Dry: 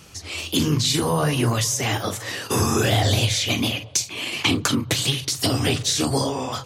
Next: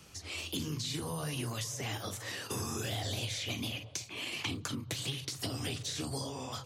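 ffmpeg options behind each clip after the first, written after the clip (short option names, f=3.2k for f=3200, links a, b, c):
-filter_complex "[0:a]acrossover=split=160|2900[a][b][c];[a]acompressor=threshold=-32dB:ratio=4[d];[b]acompressor=threshold=-31dB:ratio=4[e];[c]acompressor=threshold=-31dB:ratio=4[f];[d][e][f]amix=inputs=3:normalize=0,volume=-9dB"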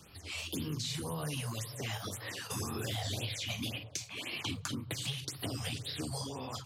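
-af "afftfilt=real='re*(1-between(b*sr/1024,280*pow(7900/280,0.5+0.5*sin(2*PI*1.9*pts/sr))/1.41,280*pow(7900/280,0.5+0.5*sin(2*PI*1.9*pts/sr))*1.41))':imag='im*(1-between(b*sr/1024,280*pow(7900/280,0.5+0.5*sin(2*PI*1.9*pts/sr))/1.41,280*pow(7900/280,0.5+0.5*sin(2*PI*1.9*pts/sr))*1.41))':win_size=1024:overlap=0.75"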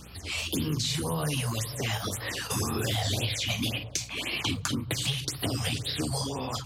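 -af "aeval=exprs='val(0)+0.00126*(sin(2*PI*60*n/s)+sin(2*PI*2*60*n/s)/2+sin(2*PI*3*60*n/s)/3+sin(2*PI*4*60*n/s)/4+sin(2*PI*5*60*n/s)/5)':c=same,volume=8dB"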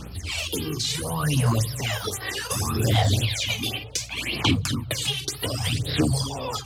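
-af "aphaser=in_gain=1:out_gain=1:delay=2.6:decay=0.64:speed=0.67:type=sinusoidal,volume=1.5dB"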